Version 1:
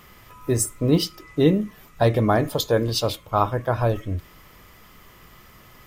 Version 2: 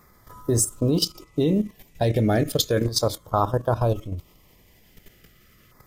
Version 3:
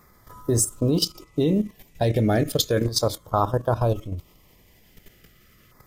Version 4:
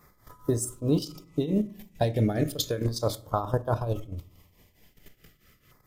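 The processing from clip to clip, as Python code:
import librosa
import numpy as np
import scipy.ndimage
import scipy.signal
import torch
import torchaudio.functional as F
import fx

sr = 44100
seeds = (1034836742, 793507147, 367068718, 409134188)

y1 = fx.dynamic_eq(x, sr, hz=7000.0, q=0.99, threshold_db=-43.0, ratio=4.0, max_db=4)
y1 = fx.filter_lfo_notch(y1, sr, shape='saw_down', hz=0.35, low_hz=820.0, high_hz=3000.0, q=0.84)
y1 = fx.level_steps(y1, sr, step_db=12)
y1 = y1 * 10.0 ** (4.5 / 20.0)
y2 = y1
y3 = fx.tremolo_shape(y2, sr, shape='triangle', hz=4.6, depth_pct=85)
y3 = fx.room_shoebox(y3, sr, seeds[0], volume_m3=540.0, walls='furnished', distance_m=0.38)
y3 = y3 * 10.0 ** (-1.0 / 20.0)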